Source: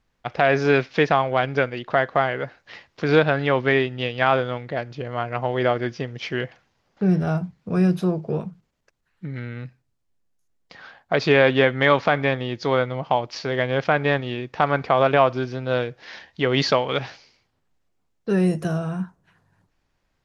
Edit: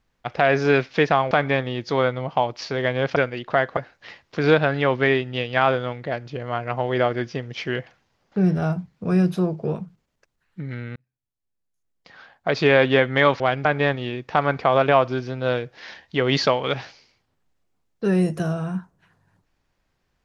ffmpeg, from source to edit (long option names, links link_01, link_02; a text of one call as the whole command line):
ffmpeg -i in.wav -filter_complex "[0:a]asplit=7[link_01][link_02][link_03][link_04][link_05][link_06][link_07];[link_01]atrim=end=1.312[link_08];[link_02]atrim=start=12.048:end=13.902[link_09];[link_03]atrim=start=1.558:end=2.172[link_10];[link_04]atrim=start=2.418:end=9.61,asetpts=PTS-STARTPTS,afade=type=out:start_time=7.188:duration=0.004:curve=hsin[link_11];[link_05]atrim=start=9.61:end=12.052,asetpts=PTS-STARTPTS,afade=type=in:duration=1.79[link_12];[link_06]atrim=start=1.308:end=1.562[link_13];[link_07]atrim=start=13.898[link_14];[link_08][link_09]acrossfade=duration=0.004:curve1=hsin:curve2=hsin[link_15];[link_15][link_10]acrossfade=duration=0.004:curve1=hsin:curve2=hsin[link_16];[link_11][link_12]concat=n=2:v=0:a=1[link_17];[link_16][link_17]acrossfade=duration=0.004:curve1=hsin:curve2=hsin[link_18];[link_18][link_13]acrossfade=duration=0.004:curve1=hsin:curve2=hsin[link_19];[link_19][link_14]acrossfade=duration=0.004:curve1=hsin:curve2=hsin" out.wav